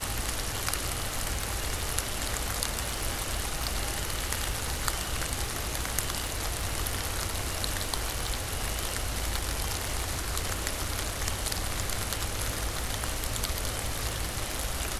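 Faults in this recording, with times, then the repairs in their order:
crackle 39 per s -34 dBFS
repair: de-click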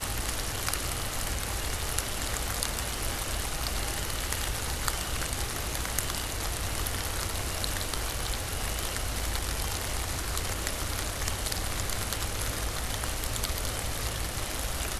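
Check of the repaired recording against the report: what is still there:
nothing left

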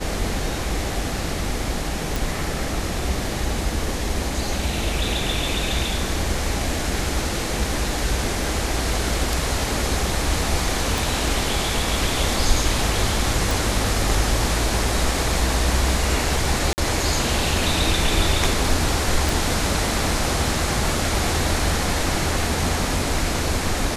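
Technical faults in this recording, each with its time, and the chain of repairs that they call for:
2.16 s: pop
10.98 s: pop
13.51 s: pop
16.73–16.78 s: dropout 49 ms
19.29 s: pop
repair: de-click; interpolate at 16.73 s, 49 ms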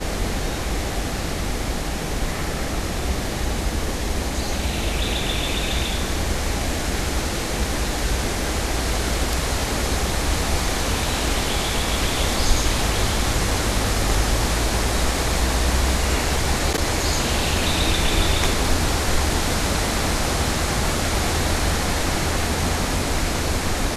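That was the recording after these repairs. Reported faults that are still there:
10.98 s: pop

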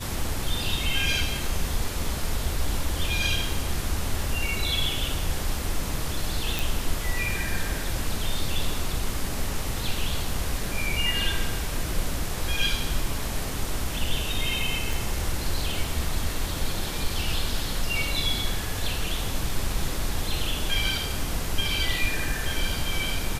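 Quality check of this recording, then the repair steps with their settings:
6.59 s: pop
14.93 s: pop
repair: de-click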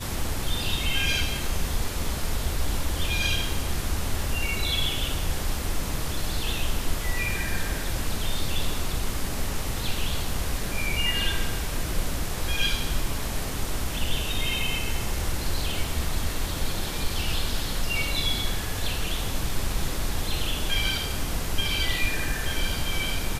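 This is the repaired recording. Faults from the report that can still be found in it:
14.93 s: pop

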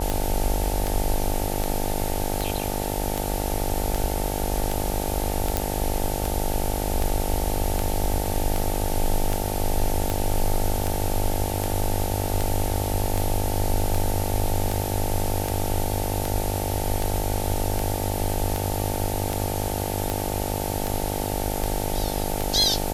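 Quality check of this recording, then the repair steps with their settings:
buzz 50 Hz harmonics 18 -29 dBFS
tick 78 rpm
5.57 s: pop -5 dBFS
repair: de-click; de-hum 50 Hz, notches 18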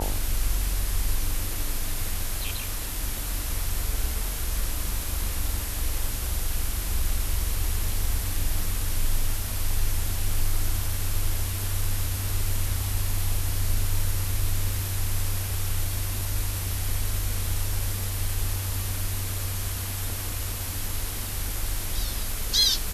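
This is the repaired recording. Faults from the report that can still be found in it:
nothing left

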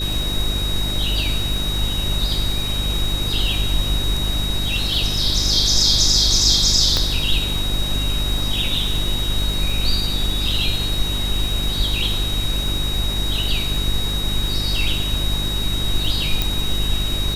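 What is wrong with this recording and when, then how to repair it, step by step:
crackle 50 per s -26 dBFS
hum 50 Hz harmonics 8 -25 dBFS
whine 3.8 kHz -24 dBFS
6.97 s: pop -5 dBFS
16.42 s: pop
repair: de-click; de-hum 50 Hz, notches 8; band-stop 3.8 kHz, Q 30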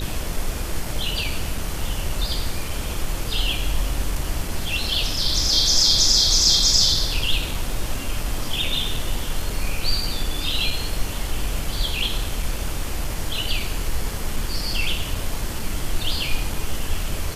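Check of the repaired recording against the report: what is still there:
6.97 s: pop
16.42 s: pop

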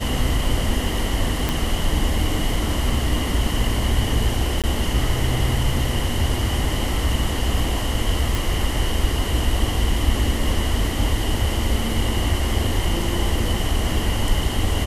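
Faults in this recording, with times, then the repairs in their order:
1.49 s: pop
4.62–4.64 s: dropout 17 ms
8.35 s: pop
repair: de-click; interpolate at 4.62 s, 17 ms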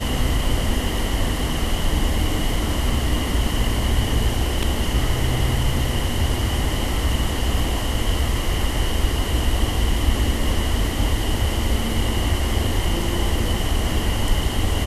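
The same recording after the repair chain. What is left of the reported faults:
nothing left

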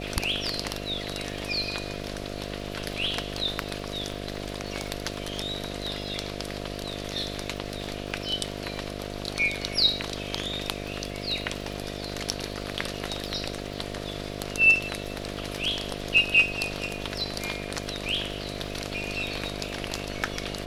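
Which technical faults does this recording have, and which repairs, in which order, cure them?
buzz 50 Hz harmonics 14 -36 dBFS
crackle 56 per s -38 dBFS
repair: de-click; de-hum 50 Hz, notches 14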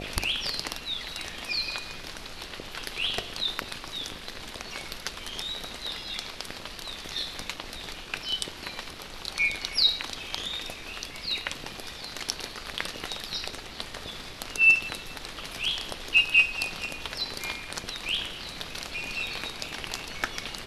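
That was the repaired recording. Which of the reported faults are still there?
nothing left

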